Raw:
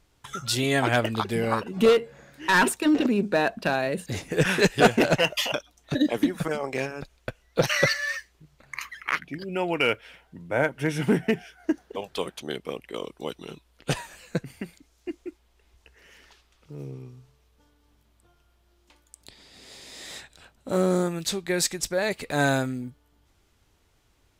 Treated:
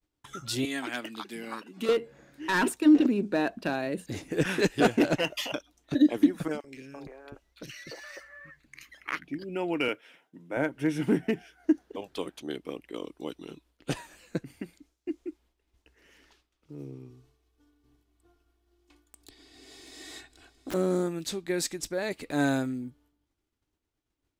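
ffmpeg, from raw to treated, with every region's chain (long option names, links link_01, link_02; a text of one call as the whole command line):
ffmpeg -i in.wav -filter_complex "[0:a]asettb=1/sr,asplit=3[link_01][link_02][link_03];[link_01]atrim=end=0.654[link_04];[link_02]atrim=start=0.65:end=1.89,asetpts=PTS-STARTPTS,afade=type=in:duration=0.004:curve=qsin,afade=type=out:start_time=1.236:duration=0.004:curve=qsin,highpass=frequency=220:width=0.5412,highpass=frequency=220:width=1.3066,equalizer=frequency=490:width_type=o:width=2.1:gain=-12[link_05];[link_03]atrim=start=1.886[link_06];[link_04][link_05]acrossfade=duration=0.004:curve1=hsin:curve2=qsin[link_07];[link_07][link_06]acrossfade=duration=0.004:curve1=qsin:curve2=hsin,asettb=1/sr,asplit=3[link_08][link_09][link_10];[link_08]atrim=end=6.604[link_11];[link_09]atrim=start=6.6:end=9.05,asetpts=PTS-STARTPTS,afade=type=in:duration=0.004:curve=qsin,afade=type=out:start_time=2.446:duration=0.004:curve=qsin,acompressor=threshold=-31dB:ratio=12:attack=3.2:release=140:knee=1:detection=peak,acrossover=split=390|1700[link_12][link_13][link_14];[link_12]adelay=40[link_15];[link_13]adelay=340[link_16];[link_15][link_16][link_14]amix=inputs=3:normalize=0,atrim=end_sample=108045[link_17];[link_10]atrim=start=9.046[link_18];[link_11][link_17]acrossfade=duration=0.004:curve1=hsin:curve2=qsin[link_19];[link_19][link_18]acrossfade=duration=0.004:curve1=qsin:curve2=hsin,asettb=1/sr,asplit=3[link_20][link_21][link_22];[link_20]atrim=end=9.884[link_23];[link_21]atrim=start=9.88:end=10.57,asetpts=PTS-STARTPTS,afade=type=in:duration=0.004:curve=qsin,afade=type=out:start_time=0.686:duration=0.004:curve=qsin,highpass=frequency=140:width=0.5412,highpass=frequency=140:width=1.3066,lowshelf=frequency=240:gain=-5,bandreject=frequency=4400:width=9[link_24];[link_22]atrim=start=10.566[link_25];[link_23][link_24]acrossfade=duration=0.004:curve1=hsin:curve2=qsin[link_26];[link_26][link_25]acrossfade=duration=0.004:curve1=qsin:curve2=hsin,asettb=1/sr,asplit=3[link_27][link_28][link_29];[link_27]atrim=end=17.104[link_30];[link_28]atrim=start=17.1:end=20.74,asetpts=PTS-STARTPTS,afade=type=in:duration=0.004:curve=qsin,afade=type=out:start_time=3.636:duration=0.004:curve=qsin,aecho=1:1:2.7:0.73,atrim=end_sample=160524,aeval=exprs='(mod(18.8*val(0)+1,2)-1)/18.8':channel_layout=same,aecho=1:1:735:0.15,atrim=end_sample=160524[link_31];[link_29]atrim=start=20.736[link_32];[link_30][link_31]acrossfade=duration=0.004:curve1=hsin:curve2=qsin[link_33];[link_33][link_32]acrossfade=duration=0.004:curve1=qsin:curve2=hsin,agate=range=-33dB:threshold=-55dB:ratio=3:detection=peak,equalizer=frequency=300:width=2.6:gain=10,volume=-7dB" out.wav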